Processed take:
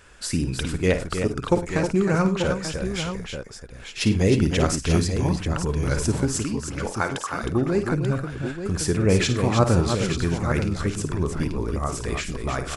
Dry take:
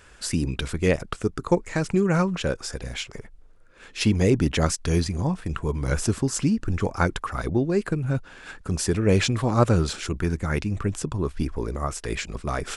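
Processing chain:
0:06.34–0:07.43: high-pass filter 510 Hz 6 dB per octave
multi-tap delay 47/54/100/313/886 ms −19.5/−10.5/−18/−7/−8.5 dB

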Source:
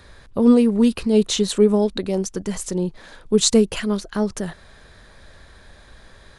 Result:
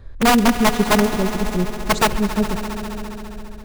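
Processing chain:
spectral tilt −3.5 dB per octave
feedback delay network reverb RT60 0.77 s, low-frequency decay 0.9×, high-frequency decay 0.8×, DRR 18 dB
wrap-around overflow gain 3 dB
on a send: echo that builds up and dies away 119 ms, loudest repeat 5, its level −16 dB
on the sum: phase-vocoder stretch with locked phases 0.57×
level −4 dB

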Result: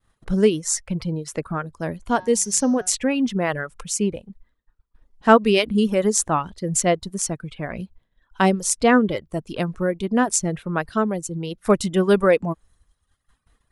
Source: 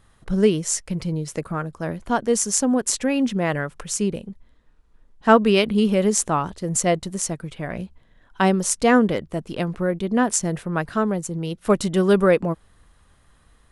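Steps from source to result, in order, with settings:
downward expander −48 dBFS
reverb reduction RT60 0.92 s
0:02.05–0:02.90: hum removal 183.4 Hz, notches 35
level +1 dB

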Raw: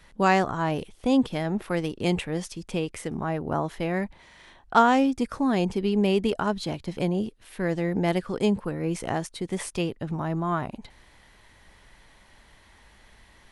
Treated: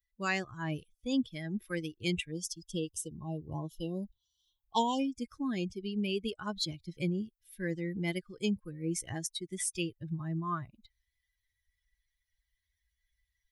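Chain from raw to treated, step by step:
spectral dynamics exaggerated over time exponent 2
parametric band 700 Hz −12 dB 1.1 octaves
time-frequency box erased 0:02.32–0:05.00, 1,100–2,700 Hz
spectral tilt +1.5 dB per octave
speech leveller within 4 dB 0.5 s

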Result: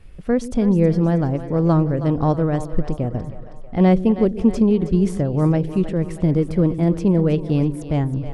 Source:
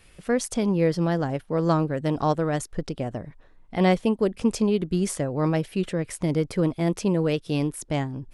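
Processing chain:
spectral tilt −3 dB per octave
echo with a time of its own for lows and highs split 410 Hz, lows 128 ms, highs 319 ms, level −12 dB

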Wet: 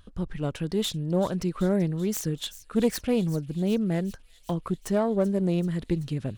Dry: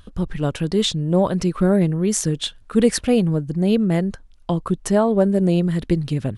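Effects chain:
phase distortion by the signal itself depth 0.098 ms
delay with a high-pass on its return 384 ms, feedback 72%, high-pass 3,800 Hz, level −13.5 dB
level −7.5 dB

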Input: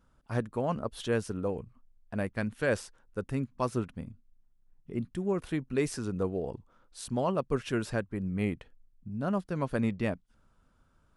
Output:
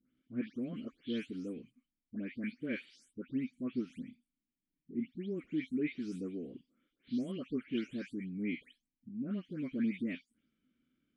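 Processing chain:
every frequency bin delayed by itself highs late, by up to 244 ms
formant filter i
level +7 dB

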